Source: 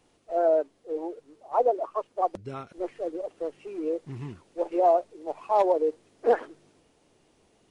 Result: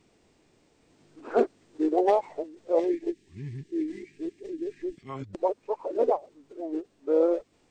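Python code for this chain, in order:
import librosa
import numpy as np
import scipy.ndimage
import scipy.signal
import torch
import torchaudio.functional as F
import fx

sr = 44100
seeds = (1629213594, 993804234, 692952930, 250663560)

y = x[::-1].copy()
y = fx.formant_shift(y, sr, semitones=-3)
y = fx.spec_box(y, sr, start_s=2.79, length_s=2.3, low_hz=450.0, high_hz=1600.0, gain_db=-16)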